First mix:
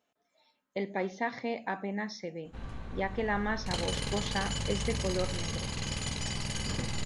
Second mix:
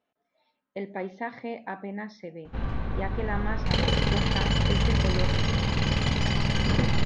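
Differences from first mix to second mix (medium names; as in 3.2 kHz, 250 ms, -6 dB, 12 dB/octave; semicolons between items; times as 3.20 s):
background +11.5 dB; master: add distance through air 210 m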